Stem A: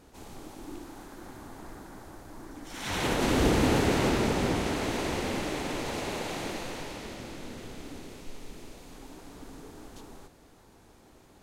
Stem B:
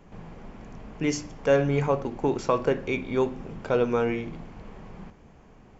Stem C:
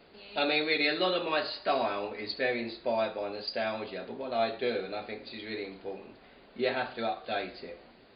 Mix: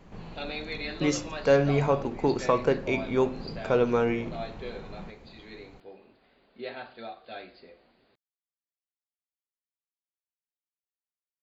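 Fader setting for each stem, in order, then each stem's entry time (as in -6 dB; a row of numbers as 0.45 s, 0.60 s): mute, 0.0 dB, -8.5 dB; mute, 0.00 s, 0.00 s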